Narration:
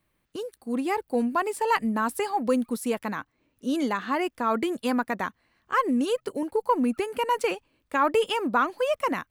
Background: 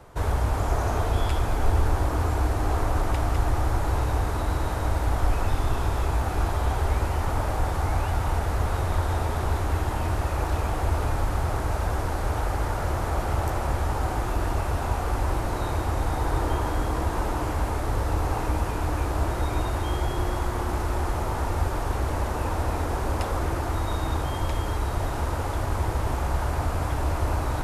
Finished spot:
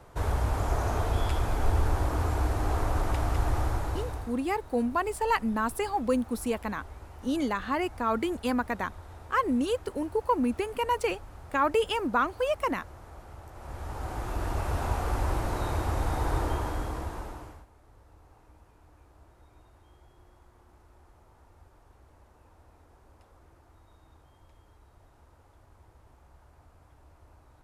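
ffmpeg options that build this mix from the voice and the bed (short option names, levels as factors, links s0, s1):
-filter_complex "[0:a]adelay=3600,volume=0.75[s0];[1:a]volume=5.31,afade=t=out:st=3.6:d=0.79:silence=0.133352,afade=t=in:st=13.52:d=1.29:silence=0.125893,afade=t=out:st=16.33:d=1.33:silence=0.0375837[s1];[s0][s1]amix=inputs=2:normalize=0"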